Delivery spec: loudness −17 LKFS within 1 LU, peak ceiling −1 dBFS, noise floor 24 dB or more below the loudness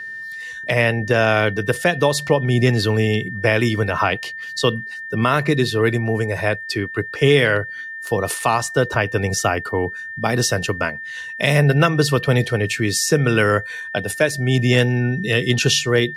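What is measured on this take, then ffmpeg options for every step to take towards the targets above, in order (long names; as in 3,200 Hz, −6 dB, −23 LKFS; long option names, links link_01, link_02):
interfering tone 1,800 Hz; level of the tone −29 dBFS; integrated loudness −19.0 LKFS; sample peak −3.5 dBFS; target loudness −17.0 LKFS
→ -af "bandreject=frequency=1800:width=30"
-af "volume=2dB"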